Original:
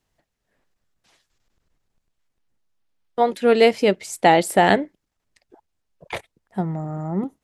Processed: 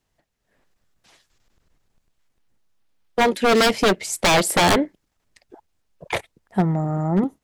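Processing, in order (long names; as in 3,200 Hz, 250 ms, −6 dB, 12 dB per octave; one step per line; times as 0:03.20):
wave folding −16 dBFS
automatic gain control gain up to 5.5 dB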